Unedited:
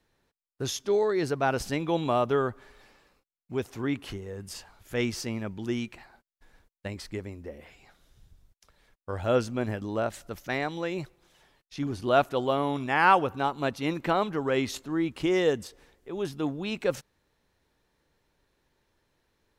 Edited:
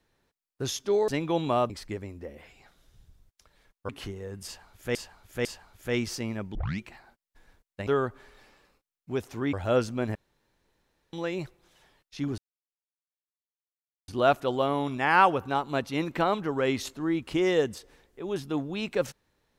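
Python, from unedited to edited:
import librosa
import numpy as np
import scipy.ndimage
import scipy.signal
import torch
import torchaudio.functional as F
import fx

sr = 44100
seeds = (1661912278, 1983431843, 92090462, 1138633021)

y = fx.edit(x, sr, fx.cut(start_s=1.08, length_s=0.59),
    fx.swap(start_s=2.29, length_s=1.66, other_s=6.93, other_length_s=2.19),
    fx.repeat(start_s=4.51, length_s=0.5, count=3),
    fx.tape_start(start_s=5.61, length_s=0.25),
    fx.room_tone_fill(start_s=9.74, length_s=0.98),
    fx.insert_silence(at_s=11.97, length_s=1.7), tone=tone)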